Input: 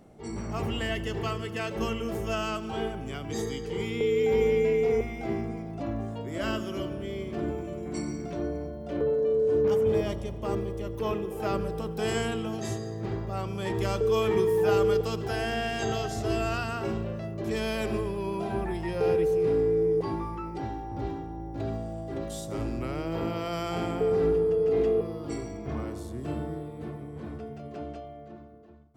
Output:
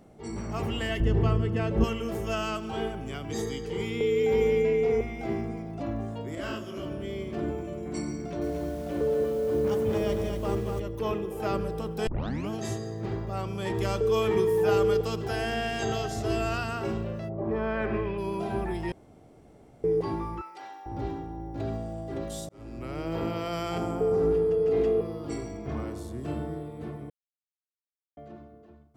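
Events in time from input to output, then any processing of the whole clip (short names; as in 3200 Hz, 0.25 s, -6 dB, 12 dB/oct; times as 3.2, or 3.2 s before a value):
1–1.84 tilt -3.5 dB/oct
4.62–5.19 high shelf 6800 Hz -6 dB
6.35–6.86 detuned doubles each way 56 cents
8.18–10.8 lo-fi delay 0.235 s, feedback 35%, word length 8-bit, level -4.5 dB
12.07 tape start 0.43 s
17.28–18.17 synth low-pass 720 Hz -> 2700 Hz, resonance Q 2.1
18.92–19.84 room tone
20.41–20.86 HPF 950 Hz
22.49–23.09 fade in
23.78–24.31 band shelf 2700 Hz -8 dB
27.1–28.17 mute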